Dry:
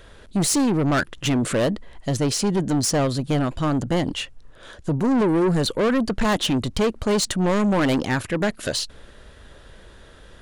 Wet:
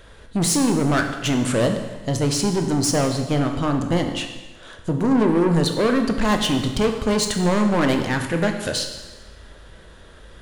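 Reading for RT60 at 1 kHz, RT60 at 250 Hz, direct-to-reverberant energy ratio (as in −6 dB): 1.2 s, 1.2 s, 4.5 dB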